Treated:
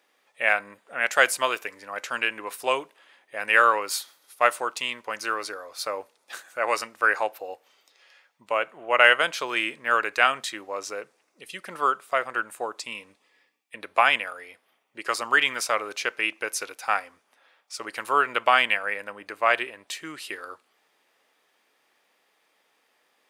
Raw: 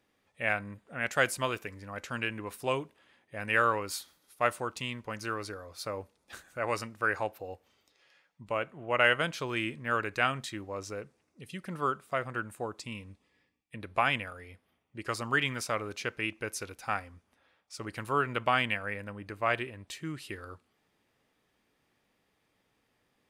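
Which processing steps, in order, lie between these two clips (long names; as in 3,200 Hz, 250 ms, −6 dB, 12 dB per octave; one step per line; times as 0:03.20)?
high-pass filter 530 Hz 12 dB per octave
level +8.5 dB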